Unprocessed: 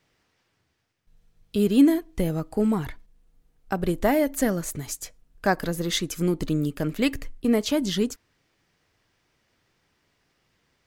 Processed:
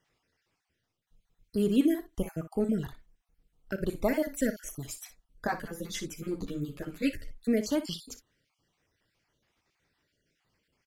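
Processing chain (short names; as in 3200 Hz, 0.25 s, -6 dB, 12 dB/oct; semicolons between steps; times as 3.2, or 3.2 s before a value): random spectral dropouts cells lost 40%; early reflections 36 ms -15.5 dB, 60 ms -12.5 dB; 5.47–7.31 ensemble effect; gain -5 dB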